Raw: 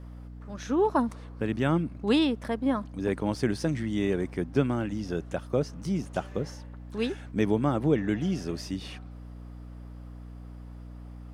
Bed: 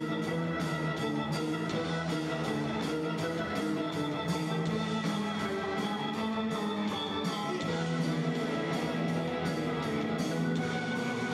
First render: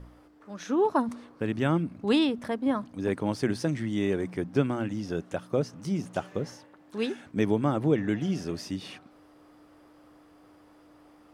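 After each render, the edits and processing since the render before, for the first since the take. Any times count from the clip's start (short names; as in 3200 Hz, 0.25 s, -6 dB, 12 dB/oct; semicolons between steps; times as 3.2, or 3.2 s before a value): de-hum 60 Hz, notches 4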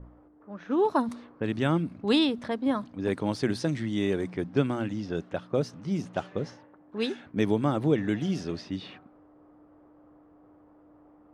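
low-pass opened by the level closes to 910 Hz, open at -24 dBFS; dynamic EQ 3900 Hz, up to +6 dB, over -59 dBFS, Q 3.1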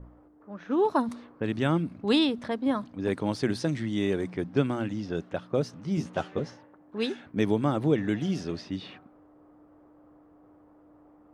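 5.96–6.4 doubler 13 ms -2 dB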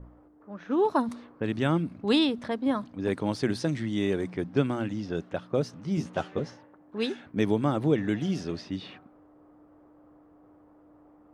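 nothing audible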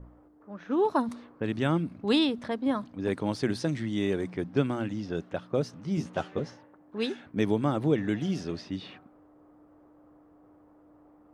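gain -1 dB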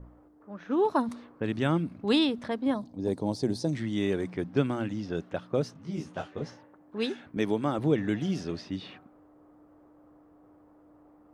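2.74–3.73 band shelf 1900 Hz -14 dB; 5.73–6.42 detuned doubles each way 31 cents; 7.37–7.79 HPF 210 Hz 6 dB/oct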